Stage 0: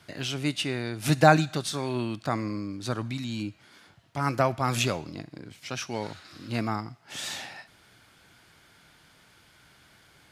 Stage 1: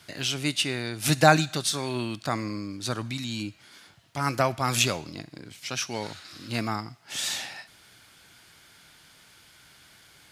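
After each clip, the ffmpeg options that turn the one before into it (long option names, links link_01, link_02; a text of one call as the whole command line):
ffmpeg -i in.wav -af "highshelf=frequency=2300:gain=8.5,volume=-1dB" out.wav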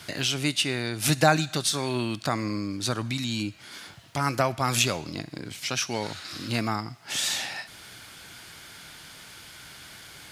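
ffmpeg -i in.wav -af "acompressor=threshold=-45dB:ratio=1.5,volume=9dB" out.wav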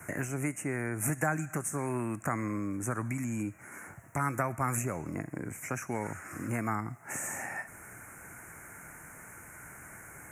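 ffmpeg -i in.wav -filter_complex "[0:a]acrossover=split=430|940[link_01][link_02][link_03];[link_01]acompressor=threshold=-32dB:ratio=4[link_04];[link_02]acompressor=threshold=-43dB:ratio=4[link_05];[link_03]acompressor=threshold=-29dB:ratio=4[link_06];[link_04][link_05][link_06]amix=inputs=3:normalize=0,asuperstop=centerf=3900:order=8:qfactor=0.81" out.wav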